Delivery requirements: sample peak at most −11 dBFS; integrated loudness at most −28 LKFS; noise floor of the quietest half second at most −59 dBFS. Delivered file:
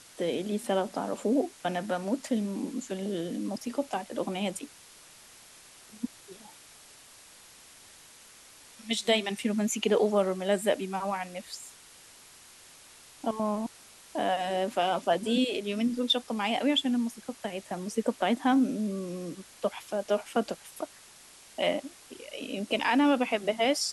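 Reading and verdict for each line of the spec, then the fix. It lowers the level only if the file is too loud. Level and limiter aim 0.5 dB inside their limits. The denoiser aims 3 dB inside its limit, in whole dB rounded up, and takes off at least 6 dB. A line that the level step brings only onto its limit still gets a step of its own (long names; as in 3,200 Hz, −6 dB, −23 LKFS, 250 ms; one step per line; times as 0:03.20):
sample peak −12.5 dBFS: in spec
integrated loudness −30.0 LKFS: in spec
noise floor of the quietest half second −53 dBFS: out of spec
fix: broadband denoise 9 dB, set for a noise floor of −53 dBFS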